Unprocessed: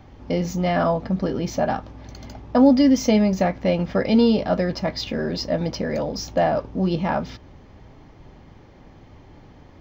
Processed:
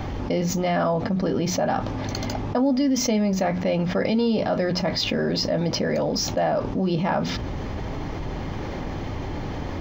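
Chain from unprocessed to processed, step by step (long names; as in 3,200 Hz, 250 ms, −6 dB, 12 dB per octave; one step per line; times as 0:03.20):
mains-hum notches 60/120/180/240 Hz
envelope flattener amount 70%
level −8 dB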